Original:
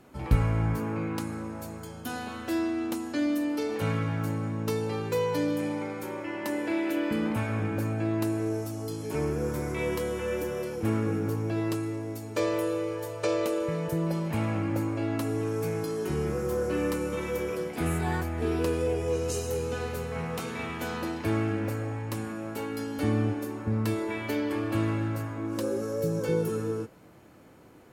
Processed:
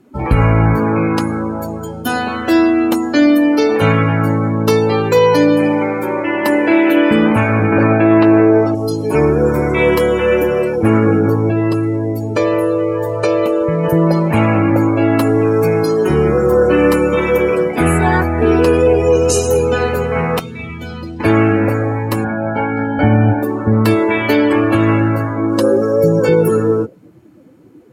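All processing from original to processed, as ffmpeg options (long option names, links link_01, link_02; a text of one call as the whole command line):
ffmpeg -i in.wav -filter_complex "[0:a]asettb=1/sr,asplit=3[link_01][link_02][link_03];[link_01]atrim=end=7.724[link_04];[link_02]atrim=start=7.72:end=8.75,asetpts=PTS-STARTPTS,afade=type=in:duration=0.004:curve=qsin,afade=type=out:start_time=1.026:duration=0.004:curve=qsin,lowshelf=frequency=140:gain=-9.5,acontrast=56,lowpass=3300[link_05];[link_03]atrim=start=8.746[link_06];[link_04][link_05]acrossfade=duration=0.004:curve1=hsin:curve2=qsin[link_07];[link_07][link_06]acrossfade=duration=0.004:curve1=qsin:curve2=hsin,asettb=1/sr,asplit=3[link_08][link_09][link_10];[link_08]atrim=end=11.494[link_11];[link_09]atrim=start=11.49:end=13.84,asetpts=PTS-STARTPTS,afade=type=in:duration=0.004:curve=qsin,afade=type=out:start_time=2.346:duration=0.004:curve=qsin,acompressor=threshold=-33dB:ratio=2:attack=3.2:release=140:knee=1:detection=peak,lowshelf=frequency=160:gain=7[link_12];[link_10]atrim=start=13.836[link_13];[link_11][link_12]acrossfade=duration=0.004:curve1=hsin:curve2=qsin[link_14];[link_14][link_13]acrossfade=duration=0.004:curve1=qsin:curve2=hsin,asettb=1/sr,asplit=3[link_15][link_16][link_17];[link_15]atrim=end=20.394[link_18];[link_16]atrim=start=20.39:end=21.2,asetpts=PTS-STARTPTS,afade=type=in:duration=0.004:curve=qsin,afade=type=out:start_time=0.806:duration=0.004:curve=qsin,aemphasis=mode=reproduction:type=cd,acrossover=split=160|3000[link_19][link_20][link_21];[link_20]acompressor=threshold=-53dB:ratio=2.5:attack=3.2:release=140:knee=2.83:detection=peak[link_22];[link_19][link_22][link_21]amix=inputs=3:normalize=0[link_23];[link_17]atrim=start=21.196[link_24];[link_18][link_23]acrossfade=duration=0.004:curve1=hsin:curve2=qsin[link_25];[link_25][link_24]acrossfade=duration=0.004:curve1=qsin:curve2=hsin,asettb=1/sr,asplit=3[link_26][link_27][link_28];[link_26]atrim=end=22.244[link_29];[link_27]atrim=start=22.24:end=23.43,asetpts=PTS-STARTPTS,afade=type=in:duration=0.004:curve=qsin,afade=type=out:start_time=1.186:duration=0.004:curve=qsin,lowpass=3600,aemphasis=mode=reproduction:type=75fm,aecho=1:1:1.3:0.64,atrim=end_sample=52479[link_30];[link_28]atrim=start=23.426[link_31];[link_29][link_30]acrossfade=duration=0.004:curve1=hsin:curve2=qsin[link_32];[link_32][link_31]acrossfade=duration=0.004:curve1=qsin:curve2=hsin,afftdn=noise_reduction=20:noise_floor=-43,lowshelf=frequency=220:gain=-6,alimiter=level_in=20dB:limit=-1dB:release=50:level=0:latency=1,volume=-1dB" out.wav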